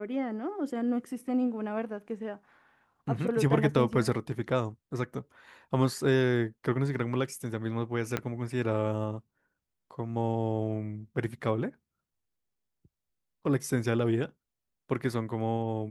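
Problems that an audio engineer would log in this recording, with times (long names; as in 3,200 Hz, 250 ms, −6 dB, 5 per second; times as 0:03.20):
0:08.17: click −14 dBFS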